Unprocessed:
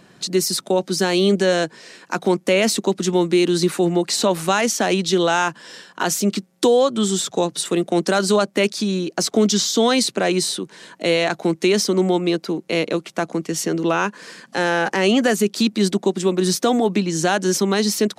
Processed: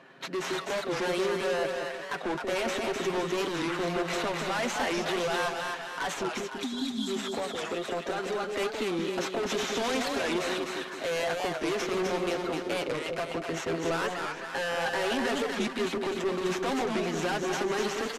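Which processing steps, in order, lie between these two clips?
median filter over 9 samples; weighting filter A; 6.62–7.08 spectral delete 280–3200 Hz; bell 10000 Hz -12 dB 1.5 oct; comb 7.5 ms, depth 54%; limiter -15 dBFS, peak gain reduction 8 dB; 6.11–8.47 compressor 5:1, threshold -28 dBFS, peak gain reduction 8.5 dB; overloaded stage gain 28.5 dB; brick-wall FIR low-pass 13000 Hz; split-band echo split 730 Hz, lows 0.175 s, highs 0.255 s, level -3.5 dB; record warp 45 rpm, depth 160 cents

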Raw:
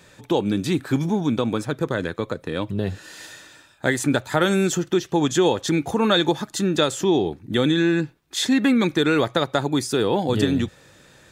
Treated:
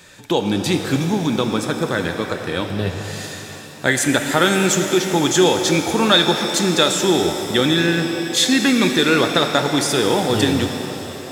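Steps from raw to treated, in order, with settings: tilt shelf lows -3.5 dB, about 1300 Hz; shimmer reverb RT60 3.3 s, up +7 st, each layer -8 dB, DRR 5 dB; gain +4.5 dB

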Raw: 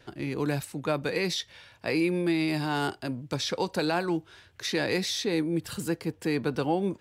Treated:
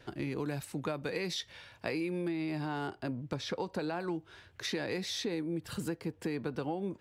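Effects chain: high shelf 3300 Hz -3 dB, from 2.28 s -12 dB, from 4 s -6.5 dB; compressor, threshold -32 dBFS, peak gain reduction 10.5 dB

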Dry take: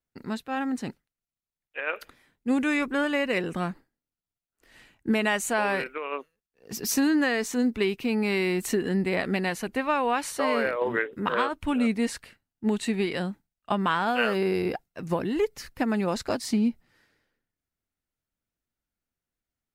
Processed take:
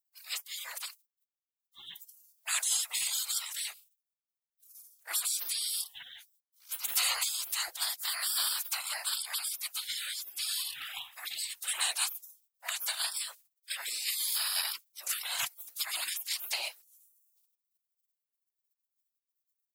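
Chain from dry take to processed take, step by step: whisperiser; spectral gate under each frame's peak -30 dB weak; RIAA curve recording; gain +9 dB

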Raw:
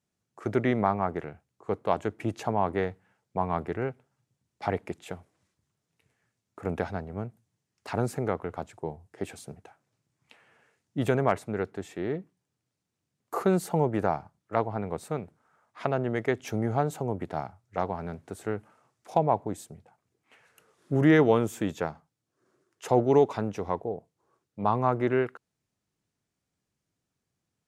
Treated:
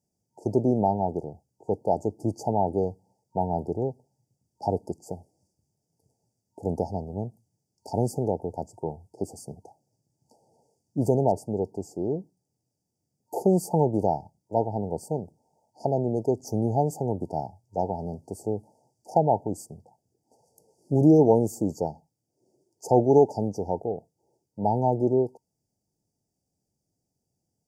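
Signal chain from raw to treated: FFT band-reject 920–4500 Hz; gain +3 dB

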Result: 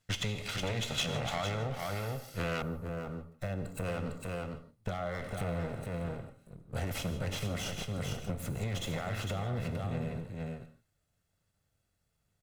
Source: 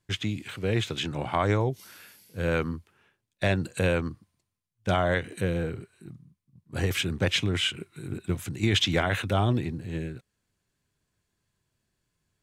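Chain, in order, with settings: minimum comb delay 1.5 ms; limiter -21.5 dBFS, peak gain reduction 8.5 dB; echo 0.454 s -6.5 dB; non-linear reverb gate 0.19 s flat, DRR 9.5 dB; compressor, threshold -31 dBFS, peak gain reduction 7 dB; bell 3800 Hz +4 dB 2.7 oct, from 2.62 s -10.5 dB, from 3.85 s -4 dB

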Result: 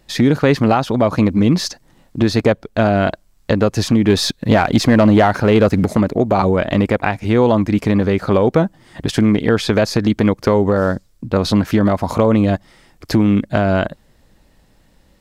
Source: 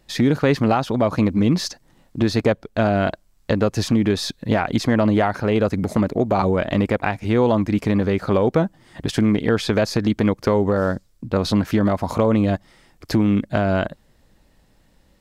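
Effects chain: 4.08–5.86 sample leveller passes 1; gain +4 dB

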